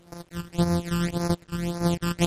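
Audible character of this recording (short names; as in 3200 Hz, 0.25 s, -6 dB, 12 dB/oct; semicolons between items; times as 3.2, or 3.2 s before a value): a buzz of ramps at a fixed pitch in blocks of 256 samples; phasing stages 12, 1.8 Hz, lowest notch 660–3100 Hz; a quantiser's noise floor 10-bit, dither none; MP3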